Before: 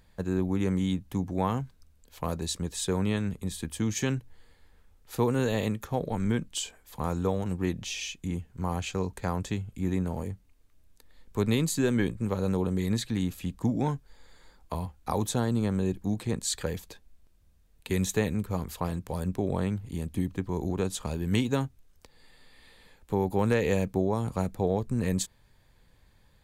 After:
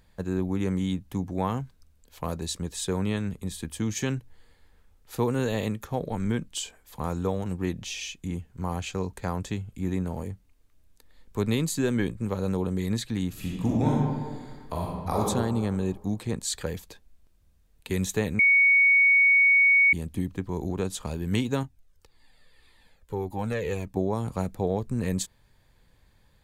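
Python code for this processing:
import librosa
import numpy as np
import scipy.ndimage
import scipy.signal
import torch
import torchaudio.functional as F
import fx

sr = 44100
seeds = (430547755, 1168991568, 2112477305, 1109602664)

y = fx.reverb_throw(x, sr, start_s=13.29, length_s=1.91, rt60_s=1.6, drr_db=-3.5)
y = fx.comb_cascade(y, sr, direction='falling', hz=1.8, at=(21.63, 23.97))
y = fx.edit(y, sr, fx.bleep(start_s=18.39, length_s=1.54, hz=2230.0, db=-15.5), tone=tone)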